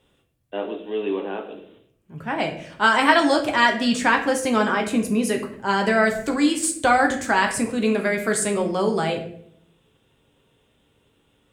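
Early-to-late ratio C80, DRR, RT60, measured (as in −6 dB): 12.0 dB, 2.0 dB, 0.65 s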